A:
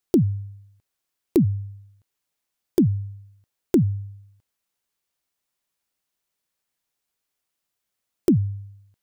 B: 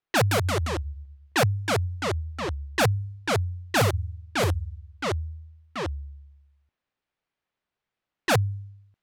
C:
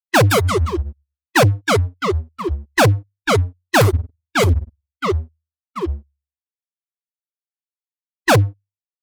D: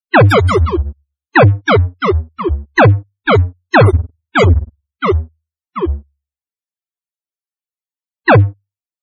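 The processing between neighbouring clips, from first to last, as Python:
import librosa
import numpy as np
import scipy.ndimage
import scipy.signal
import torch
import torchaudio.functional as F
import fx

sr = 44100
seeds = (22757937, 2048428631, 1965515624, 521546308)

y1 = (np.mod(10.0 ** (15.0 / 20.0) * x + 1.0, 2.0) - 1.0) / 10.0 ** (15.0 / 20.0)
y1 = fx.echo_pitch(y1, sr, ms=155, semitones=-2, count=3, db_per_echo=-3.0)
y1 = fx.env_lowpass(y1, sr, base_hz=2600.0, full_db=-18.0)
y1 = y1 * 10.0 ** (-1.0 / 20.0)
y2 = fx.bin_expand(y1, sr, power=3.0)
y2 = fx.leveller(y2, sr, passes=3)
y2 = y2 * 10.0 ** (7.5 / 20.0)
y3 = fx.spec_topn(y2, sr, count=64)
y3 = y3 * 10.0 ** (6.0 / 20.0)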